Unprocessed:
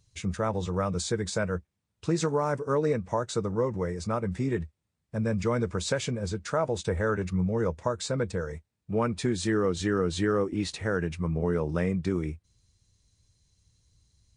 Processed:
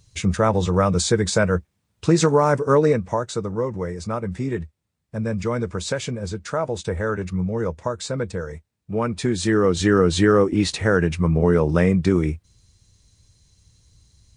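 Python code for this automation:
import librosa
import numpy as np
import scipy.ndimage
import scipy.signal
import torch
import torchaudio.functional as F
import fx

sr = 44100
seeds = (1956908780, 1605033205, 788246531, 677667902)

y = fx.gain(x, sr, db=fx.line((2.76, 10.0), (3.35, 3.0), (8.93, 3.0), (9.93, 10.0)))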